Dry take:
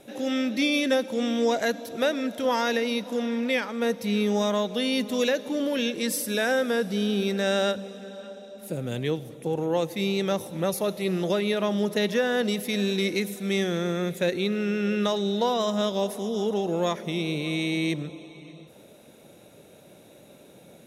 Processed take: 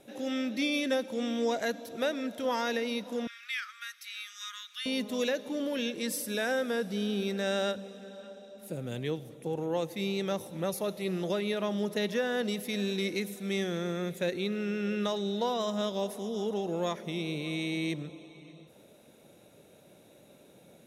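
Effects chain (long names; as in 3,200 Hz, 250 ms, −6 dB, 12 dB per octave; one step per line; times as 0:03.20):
0:03.27–0:04.86: Butterworth high-pass 1,200 Hz 96 dB per octave
level −6 dB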